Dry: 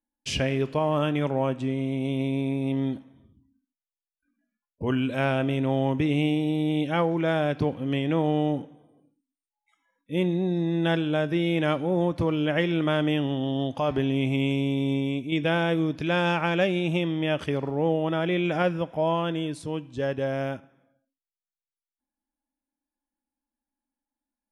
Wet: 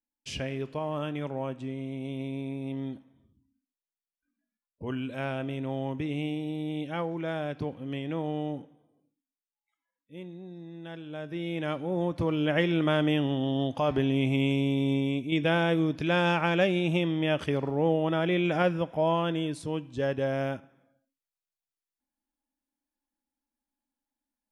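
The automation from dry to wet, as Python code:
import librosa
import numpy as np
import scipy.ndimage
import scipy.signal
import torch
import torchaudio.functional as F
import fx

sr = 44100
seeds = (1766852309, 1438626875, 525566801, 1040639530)

y = fx.gain(x, sr, db=fx.line((8.62, -8.0), (10.28, -18.0), (10.9, -18.0), (11.42, -9.0), (12.54, -1.0)))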